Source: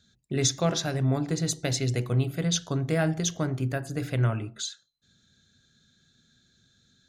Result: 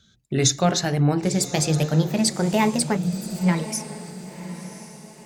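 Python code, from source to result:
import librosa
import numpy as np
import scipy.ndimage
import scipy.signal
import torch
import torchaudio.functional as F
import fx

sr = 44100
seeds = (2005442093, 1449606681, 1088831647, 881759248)

y = fx.speed_glide(x, sr, from_pct=95, to_pct=175)
y = fx.spec_erase(y, sr, start_s=2.97, length_s=0.49, low_hz=210.0, high_hz=6800.0)
y = fx.echo_diffused(y, sr, ms=1044, feedback_pct=40, wet_db=-13.0)
y = y * 10.0 ** (5.5 / 20.0)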